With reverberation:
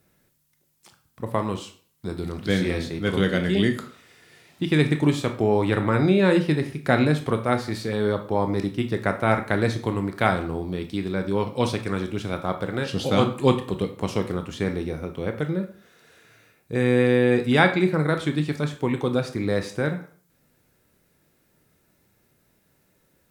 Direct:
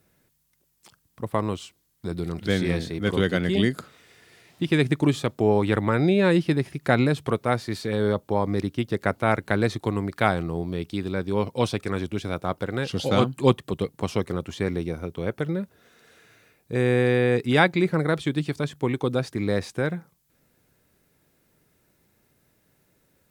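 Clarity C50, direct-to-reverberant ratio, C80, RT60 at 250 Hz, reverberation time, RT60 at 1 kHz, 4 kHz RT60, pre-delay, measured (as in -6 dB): 11.0 dB, 6.0 dB, 15.0 dB, 0.45 s, 0.45 s, 0.45 s, 0.40 s, 16 ms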